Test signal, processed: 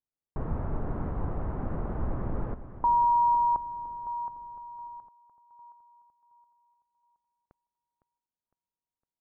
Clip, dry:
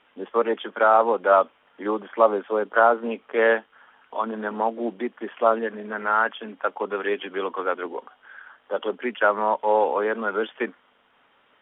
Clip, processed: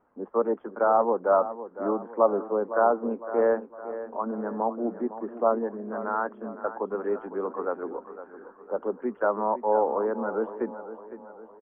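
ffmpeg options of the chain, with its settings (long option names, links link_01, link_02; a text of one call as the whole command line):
ffmpeg -i in.wav -af "lowpass=frequency=1200:width=0.5412,lowpass=frequency=1200:width=1.3066,lowshelf=frequency=270:gain=8,aecho=1:1:508|1016|1524|2032|2540:0.224|0.107|0.0516|0.0248|0.0119,volume=-4.5dB" out.wav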